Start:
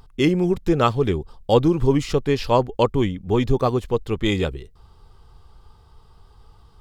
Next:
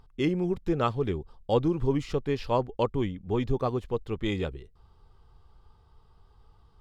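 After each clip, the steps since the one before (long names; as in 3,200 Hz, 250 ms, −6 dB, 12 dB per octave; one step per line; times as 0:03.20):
high-shelf EQ 5,300 Hz −9 dB
level −8 dB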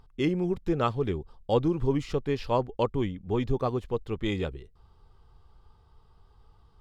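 no processing that can be heard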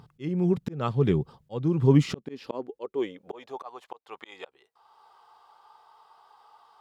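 high-pass filter sweep 140 Hz → 830 Hz, 0:01.86–0:03.65
volume swells 601 ms
level +7.5 dB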